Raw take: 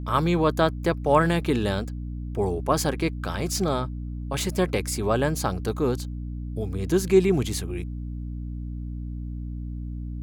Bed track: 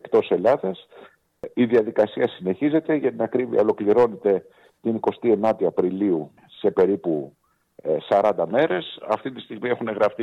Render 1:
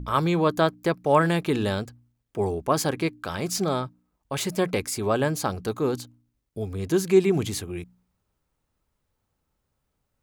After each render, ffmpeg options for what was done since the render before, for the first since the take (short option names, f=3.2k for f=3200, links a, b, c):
-af "bandreject=f=60:t=h:w=4,bandreject=f=120:t=h:w=4,bandreject=f=180:t=h:w=4,bandreject=f=240:t=h:w=4,bandreject=f=300:t=h:w=4"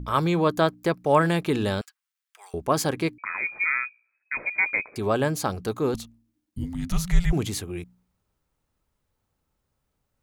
-filter_complex "[0:a]asettb=1/sr,asplit=3[a][b][c];[a]atrim=end=1.814[d];[b]atrim=start=1.81:end=2.54,asetpts=PTS-STARTPTS,afade=t=in:d=0.004:c=qsin,afade=t=out:st=0.726:d=0.004:c=qsin,highpass=f=1.3k:w=0.5412,highpass=f=1.3k:w=1.3066[e];[c]atrim=start=2.536[f];[d][e]acrossfade=d=0.004:c1=hsin:c2=qsin[g];[g][f]acrossfade=d=0.004:c1=qsin:c2=hsin,asettb=1/sr,asplit=3[h][i][j];[h]atrim=end=3.184[k];[i]atrim=start=3.18:end=4.96,asetpts=PTS-STARTPTS,afade=t=in:d=0.004:c=qsin,afade=t=out:st=1.776:d=0.004:c=qsin,lowpass=f=2.2k:t=q:w=0.5098,lowpass=f=2.2k:t=q:w=0.6013,lowpass=f=2.2k:t=q:w=0.9,lowpass=f=2.2k:t=q:w=2.563,afreqshift=-2600[l];[j]atrim=start=4.956[m];[k][l]acrossfade=d=0.004:c1=hsin:c2=qsin[n];[n][m]acrossfade=d=0.004:c1=qsin:c2=hsin,asettb=1/sr,asplit=3[o][p][q];[o]atrim=end=5.944[r];[p]atrim=start=5.94:end=7.33,asetpts=PTS-STARTPTS,afade=t=in:d=0.004:c=qsin,afade=t=out:st=1.386:d=0.004:c=qsin,afreqshift=-350[s];[q]atrim=start=7.326[t];[r][s]acrossfade=d=0.004:c1=hsin:c2=qsin[u];[u][t]acrossfade=d=0.004:c1=qsin:c2=hsin"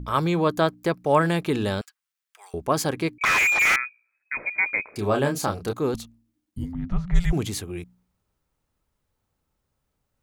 -filter_complex "[0:a]asettb=1/sr,asplit=3[a][b][c];[a]atrim=end=3.214[d];[b]atrim=start=3.21:end=3.76,asetpts=PTS-STARTPTS,afade=t=in:d=0.004:c=qsin,afade=t=out:st=0.546:d=0.004:c=qsin,asplit=2[e][f];[f]highpass=f=720:p=1,volume=37dB,asoftclip=type=tanh:threshold=-12dB[g];[e][g]amix=inputs=2:normalize=0,lowpass=f=3.3k:p=1,volume=-6dB[h];[c]atrim=start=3.756[i];[d][h]acrossfade=d=0.004:c1=hsin:c2=qsin[j];[j][i]acrossfade=d=0.004:c1=qsin:c2=hsin,asettb=1/sr,asplit=3[k][l][m];[k]atrim=end=4.834[n];[l]atrim=start=4.83:end=5.73,asetpts=PTS-STARTPTS,afade=t=in:d=0.004:c=qsin,afade=t=out:st=0.896:d=0.004:c=qsin,asplit=2[o][p];[p]adelay=29,volume=-5dB[q];[o][q]amix=inputs=2:normalize=0,atrim=end_sample=39690[r];[m]atrim=start=5.726[s];[n][r]acrossfade=d=0.004:c1=hsin:c2=qsin[t];[t][s]acrossfade=d=0.004:c1=qsin:c2=hsin,asplit=3[u][v][w];[u]afade=t=out:st=6.71:d=0.02[x];[v]lowpass=1.4k,afade=t=in:st=6.71:d=0.02,afade=t=out:st=7.14:d=0.02[y];[w]afade=t=in:st=7.14:d=0.02[z];[x][y][z]amix=inputs=3:normalize=0"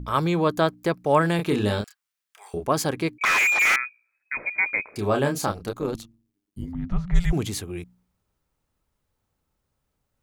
-filter_complex "[0:a]asettb=1/sr,asplit=3[a][b][c];[a]atrim=end=1.364[d];[b]atrim=start=1.36:end=2.66,asetpts=PTS-STARTPTS,afade=t=in:d=0.004:c=qsin,afade=t=out:st=1.296:d=0.004:c=qsin,asplit=2[e][f];[f]adelay=29,volume=-4dB[g];[e][g]amix=inputs=2:normalize=0,atrim=end_sample=57330[h];[c]atrim=start=2.656[i];[d][h]acrossfade=d=0.004:c1=hsin:c2=qsin[j];[j][i]acrossfade=d=0.004:c1=qsin:c2=hsin,asettb=1/sr,asplit=3[k][l][m];[k]atrim=end=3.174[n];[l]atrim=start=3.17:end=3.8,asetpts=PTS-STARTPTS,afade=t=in:d=0.004:c=qsin,afade=t=out:st=0.626:d=0.004:c=qsin,equalizer=f=74:w=0.65:g=-13.5[o];[m]atrim=start=3.796[p];[n][o]acrossfade=d=0.004:c1=hsin:c2=qsin[q];[q][p]acrossfade=d=0.004:c1=qsin:c2=hsin,asettb=1/sr,asplit=3[r][s][t];[r]atrim=end=5.524[u];[s]atrim=start=5.52:end=6.68,asetpts=PTS-STARTPTS,afade=t=in:d=0.004:c=qsin,afade=t=out:st=1.156:d=0.004:c=qsin,tremolo=f=100:d=0.71[v];[t]atrim=start=6.676[w];[u][v]acrossfade=d=0.004:c1=hsin:c2=qsin[x];[x][w]acrossfade=d=0.004:c1=qsin:c2=hsin"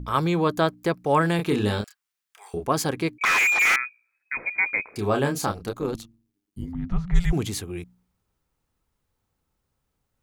-af "bandreject=f=600:w=12"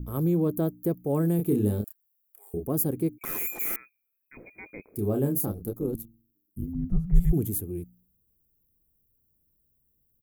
-af "firequalizer=gain_entry='entry(330,0);entry(930,-19);entry(1700,-23);entry(4300,-24);entry(13000,15)':delay=0.05:min_phase=1"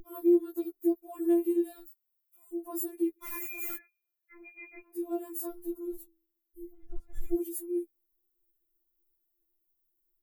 -af "flanger=delay=2.1:depth=3.6:regen=-48:speed=1.6:shape=sinusoidal,afftfilt=real='re*4*eq(mod(b,16),0)':imag='im*4*eq(mod(b,16),0)':win_size=2048:overlap=0.75"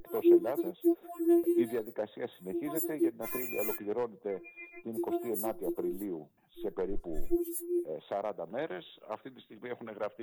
-filter_complex "[1:a]volume=-17dB[a];[0:a][a]amix=inputs=2:normalize=0"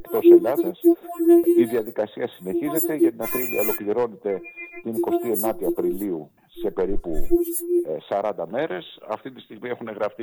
-af "volume=11dB"